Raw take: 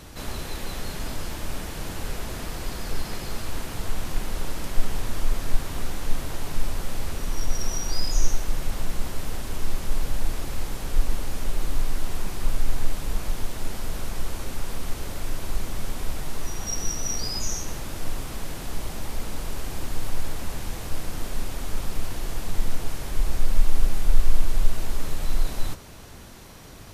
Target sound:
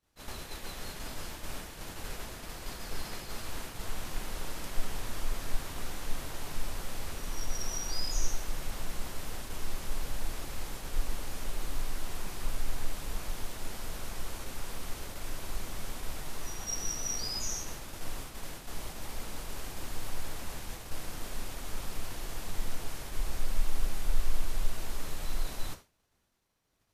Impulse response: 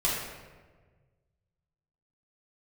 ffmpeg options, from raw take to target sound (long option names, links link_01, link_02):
-af "lowshelf=frequency=460:gain=-5.5,agate=range=-33dB:threshold=-31dB:ratio=3:detection=peak,volume=-4.5dB"